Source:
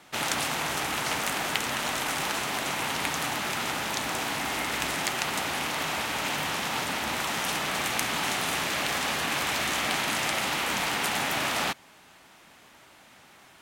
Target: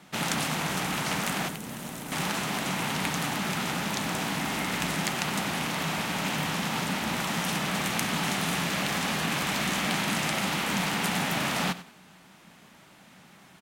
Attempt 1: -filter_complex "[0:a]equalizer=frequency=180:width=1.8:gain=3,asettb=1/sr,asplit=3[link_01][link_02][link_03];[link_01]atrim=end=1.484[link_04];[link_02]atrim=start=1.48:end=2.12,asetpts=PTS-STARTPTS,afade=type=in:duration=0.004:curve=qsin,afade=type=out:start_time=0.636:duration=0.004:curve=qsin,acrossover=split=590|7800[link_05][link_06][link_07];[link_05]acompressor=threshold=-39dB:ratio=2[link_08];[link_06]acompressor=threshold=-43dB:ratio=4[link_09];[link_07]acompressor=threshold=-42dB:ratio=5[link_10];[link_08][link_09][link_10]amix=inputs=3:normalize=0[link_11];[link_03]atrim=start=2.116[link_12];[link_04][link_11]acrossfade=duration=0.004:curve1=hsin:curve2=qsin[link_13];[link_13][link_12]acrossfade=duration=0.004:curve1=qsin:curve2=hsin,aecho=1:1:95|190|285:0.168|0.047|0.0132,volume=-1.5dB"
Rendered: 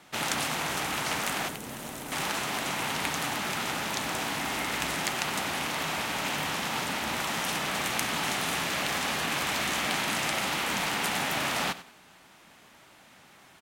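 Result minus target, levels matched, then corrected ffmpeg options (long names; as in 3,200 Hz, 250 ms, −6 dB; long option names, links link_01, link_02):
250 Hz band −5.5 dB
-filter_complex "[0:a]equalizer=frequency=180:width=1.8:gain=13.5,asettb=1/sr,asplit=3[link_01][link_02][link_03];[link_01]atrim=end=1.484[link_04];[link_02]atrim=start=1.48:end=2.12,asetpts=PTS-STARTPTS,afade=type=in:duration=0.004:curve=qsin,afade=type=out:start_time=0.636:duration=0.004:curve=qsin,acrossover=split=590|7800[link_05][link_06][link_07];[link_05]acompressor=threshold=-39dB:ratio=2[link_08];[link_06]acompressor=threshold=-43dB:ratio=4[link_09];[link_07]acompressor=threshold=-42dB:ratio=5[link_10];[link_08][link_09][link_10]amix=inputs=3:normalize=0[link_11];[link_03]atrim=start=2.116[link_12];[link_04][link_11]acrossfade=duration=0.004:curve1=hsin:curve2=qsin[link_13];[link_13][link_12]acrossfade=duration=0.004:curve1=qsin:curve2=hsin,aecho=1:1:95|190|285:0.168|0.047|0.0132,volume=-1.5dB"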